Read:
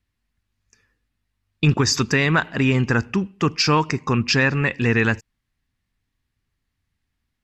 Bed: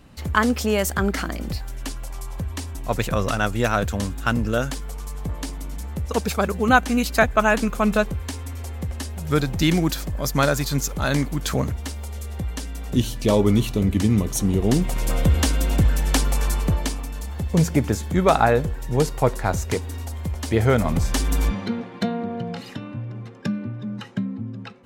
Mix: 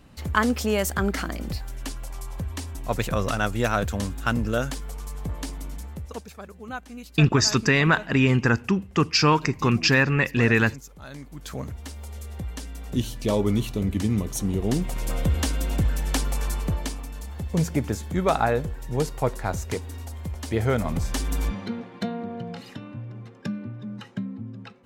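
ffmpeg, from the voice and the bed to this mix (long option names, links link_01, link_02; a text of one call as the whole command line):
ffmpeg -i stem1.wav -i stem2.wav -filter_complex "[0:a]adelay=5550,volume=-1dB[link_01];[1:a]volume=11.5dB,afade=type=out:start_time=5.67:duration=0.6:silence=0.149624,afade=type=in:start_time=11.2:duration=0.92:silence=0.199526[link_02];[link_01][link_02]amix=inputs=2:normalize=0" out.wav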